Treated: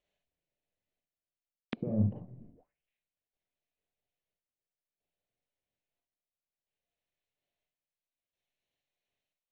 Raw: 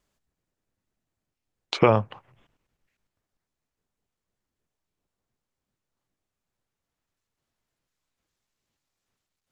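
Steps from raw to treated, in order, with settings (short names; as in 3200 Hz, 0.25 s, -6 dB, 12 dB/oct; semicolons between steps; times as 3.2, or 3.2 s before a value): Wiener smoothing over 9 samples; gate with hold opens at -57 dBFS; EQ curve 250 Hz 0 dB, 630 Hz +11 dB, 1200 Hz -4 dB, 2500 Hz +12 dB; reverse; compressor 16:1, threshold -29 dBFS, peak gain reduction 24.5 dB; reverse; soft clip -25 dBFS, distortion -15 dB; chopper 0.6 Hz, depth 65%, duty 60%; in parallel at -5 dB: hard clip -33.5 dBFS, distortion -10 dB; on the sum: reverb, pre-delay 33 ms, DRR 0.5 dB; envelope low-pass 230–4900 Hz down, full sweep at -46.5 dBFS; gain +2 dB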